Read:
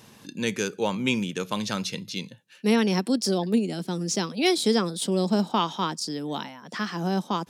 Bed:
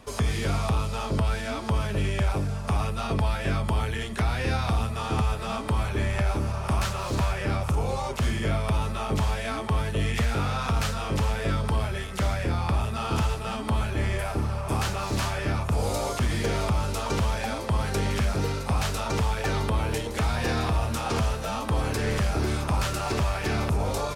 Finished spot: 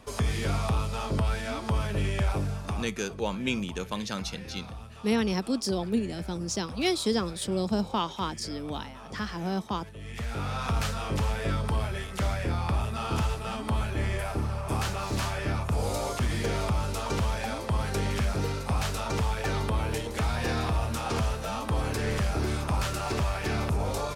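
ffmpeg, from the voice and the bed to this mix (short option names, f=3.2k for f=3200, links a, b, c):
-filter_complex "[0:a]adelay=2400,volume=-4.5dB[a];[1:a]volume=12.5dB,afade=t=out:st=2.5:d=0.44:silence=0.177828,afade=t=in:st=10.01:d=0.67:silence=0.188365[b];[a][b]amix=inputs=2:normalize=0"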